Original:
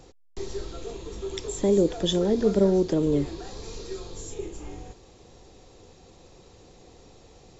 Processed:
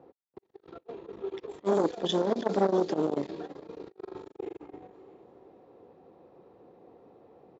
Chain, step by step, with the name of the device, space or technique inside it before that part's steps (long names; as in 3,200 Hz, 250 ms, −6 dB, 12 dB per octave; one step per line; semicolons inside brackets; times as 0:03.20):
low-pass that shuts in the quiet parts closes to 950 Hz, open at −18 dBFS
0:03.78–0:04.57: flutter between parallel walls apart 7.2 metres, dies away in 1.3 s
repeating echo 338 ms, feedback 51%, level −17 dB
public-address speaker with an overloaded transformer (saturating transformer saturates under 610 Hz; band-pass filter 230–5,600 Hz)